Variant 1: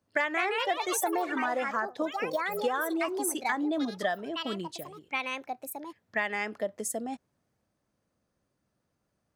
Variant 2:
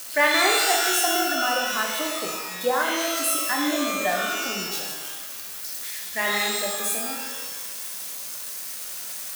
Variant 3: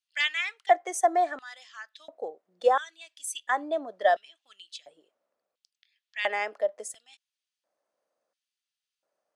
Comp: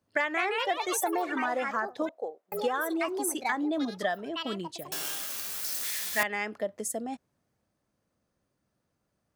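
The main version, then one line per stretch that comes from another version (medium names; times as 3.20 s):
1
2.09–2.52 s: from 3
4.92–6.23 s: from 2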